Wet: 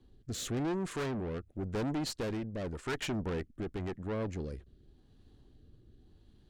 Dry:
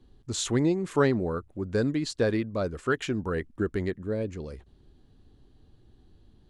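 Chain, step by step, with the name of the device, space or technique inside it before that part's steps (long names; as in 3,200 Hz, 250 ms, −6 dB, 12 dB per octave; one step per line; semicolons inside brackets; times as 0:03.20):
overdriven rotary cabinet (tube saturation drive 33 dB, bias 0.6; rotating-speaker cabinet horn 0.9 Hz)
level +2.5 dB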